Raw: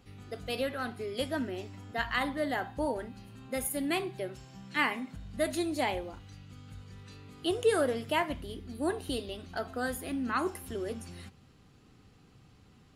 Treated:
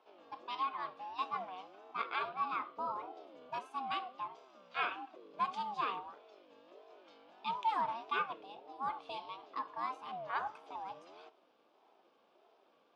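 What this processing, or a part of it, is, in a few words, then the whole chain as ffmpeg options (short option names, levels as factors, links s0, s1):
voice changer toy: -filter_complex "[0:a]asettb=1/sr,asplit=3[s0][s1][s2];[s0]atrim=end=2.934[s3];[s1]atrim=start=2.93:end=3.59,asetpts=PTS-STARTPTS,afade=t=in:d=0.004:c=qsin,afade=t=out:st=0.656:d=0.004:c=qsin,bass=f=250:g=8,treble=f=4000:g=3[s4];[s2]atrim=start=3.586[s5];[s3][s4]acrossfade=d=0.004:c1=hsin:c2=qsin[s6];[s6][s5]acrossfade=d=0.004:c1=qsin:c2=hsin,aeval=exprs='val(0)*sin(2*PI*460*n/s+460*0.2/1.6*sin(2*PI*1.6*n/s))':c=same,highpass=490,equalizer=f=570:t=q:w=4:g=-6,equalizer=f=1100:t=q:w=4:g=7,equalizer=f=1900:t=q:w=4:g=-10,equalizer=f=4200:t=q:w=4:g=-6,lowpass=f=4500:w=0.5412,lowpass=f=4500:w=1.3066,volume=0.75"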